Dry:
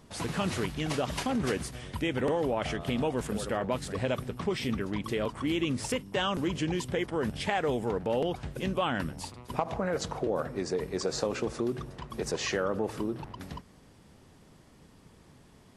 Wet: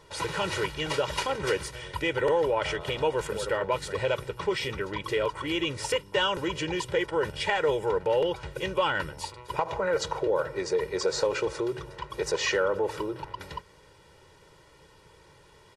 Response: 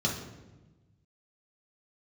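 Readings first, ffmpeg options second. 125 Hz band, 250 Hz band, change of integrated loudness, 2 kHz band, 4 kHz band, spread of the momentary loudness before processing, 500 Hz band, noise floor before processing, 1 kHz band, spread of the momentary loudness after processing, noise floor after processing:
-3.5 dB, -4.0 dB, +3.0 dB, +5.5 dB, +5.0 dB, 6 LU, +4.5 dB, -57 dBFS, +4.0 dB, 8 LU, -56 dBFS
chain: -filter_complex "[0:a]asplit=2[a][b];[b]highpass=f=720:p=1,volume=8dB,asoftclip=type=tanh:threshold=-13.5dB[c];[a][c]amix=inputs=2:normalize=0,lowpass=f=4.3k:p=1,volume=-6dB,aecho=1:1:2.1:0.89"

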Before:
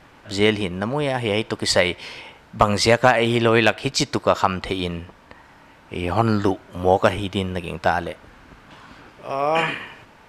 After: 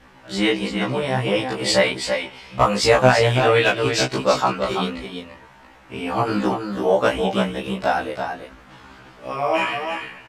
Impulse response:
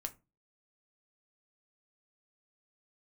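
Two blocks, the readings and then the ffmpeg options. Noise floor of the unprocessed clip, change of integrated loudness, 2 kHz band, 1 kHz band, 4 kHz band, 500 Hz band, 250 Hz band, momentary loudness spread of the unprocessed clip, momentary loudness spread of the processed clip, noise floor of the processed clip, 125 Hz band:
-50 dBFS, +0.5 dB, +0.5 dB, +0.5 dB, +0.5 dB, +1.5 dB, -0.5 dB, 16 LU, 15 LU, -48 dBFS, 0.0 dB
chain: -af "aecho=1:1:334:0.473,flanger=delay=19:depth=6.7:speed=1.4,afftfilt=real='re*1.73*eq(mod(b,3),0)':imag='im*1.73*eq(mod(b,3),0)':win_size=2048:overlap=0.75,volume=5dB"

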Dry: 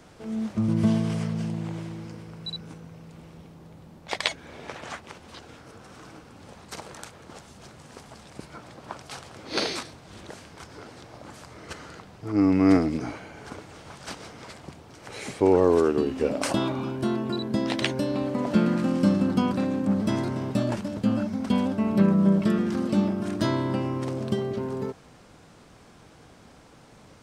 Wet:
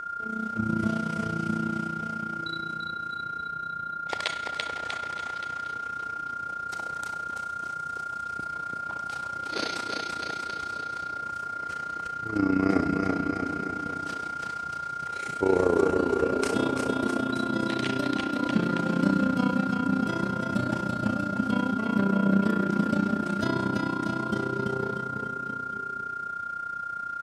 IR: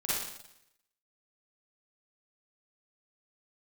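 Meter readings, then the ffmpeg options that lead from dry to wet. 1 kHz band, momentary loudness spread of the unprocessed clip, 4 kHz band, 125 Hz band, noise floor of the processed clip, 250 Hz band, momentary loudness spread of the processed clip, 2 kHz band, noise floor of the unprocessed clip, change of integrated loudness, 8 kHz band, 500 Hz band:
+7.0 dB, 23 LU, -2.5 dB, -3.5 dB, -37 dBFS, -2.5 dB, 9 LU, +6.0 dB, -52 dBFS, -3.5 dB, -2.5 dB, -2.5 dB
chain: -filter_complex "[0:a]aecho=1:1:340|646|921.4|1169|1392:0.631|0.398|0.251|0.158|0.1,aeval=exprs='val(0)+0.0398*sin(2*PI*1400*n/s)':c=same,asplit=2[a][b];[1:a]atrim=start_sample=2205[c];[b][c]afir=irnorm=-1:irlink=0,volume=-11.5dB[d];[a][d]amix=inputs=2:normalize=0,tremolo=f=30:d=0.75,volume=-3.5dB"

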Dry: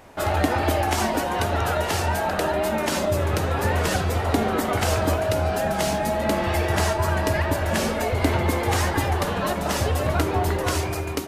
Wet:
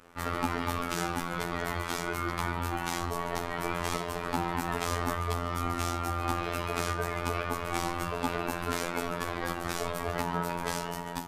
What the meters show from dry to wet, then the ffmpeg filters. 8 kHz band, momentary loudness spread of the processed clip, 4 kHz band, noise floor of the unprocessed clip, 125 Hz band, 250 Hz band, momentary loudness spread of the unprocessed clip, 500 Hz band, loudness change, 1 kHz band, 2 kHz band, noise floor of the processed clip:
-8.5 dB, 2 LU, -8.5 dB, -27 dBFS, -12.0 dB, -9.0 dB, 2 LU, -12.0 dB, -9.5 dB, -7.5 dB, -7.5 dB, -37 dBFS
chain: -af "aeval=exprs='val(0)*sin(2*PI*550*n/s)':c=same,afftfilt=real='hypot(re,im)*cos(PI*b)':imag='0':win_size=2048:overlap=0.75,volume=-2.5dB"

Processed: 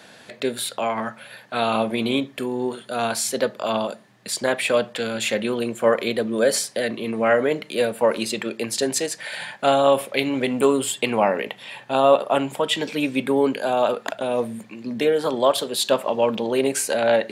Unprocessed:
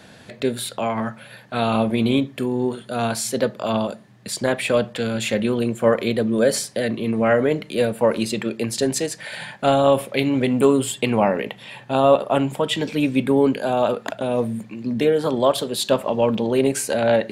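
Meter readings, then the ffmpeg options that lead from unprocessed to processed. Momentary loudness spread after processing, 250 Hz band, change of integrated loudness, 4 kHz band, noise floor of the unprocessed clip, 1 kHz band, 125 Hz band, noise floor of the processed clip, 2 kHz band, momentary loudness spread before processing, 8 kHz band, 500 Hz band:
8 LU, -4.5 dB, -1.0 dB, +1.5 dB, -46 dBFS, +0.5 dB, -9.5 dB, -49 dBFS, +1.5 dB, 8 LU, +1.5 dB, -1.0 dB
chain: -af "highpass=f=440:p=1,volume=1.5dB"

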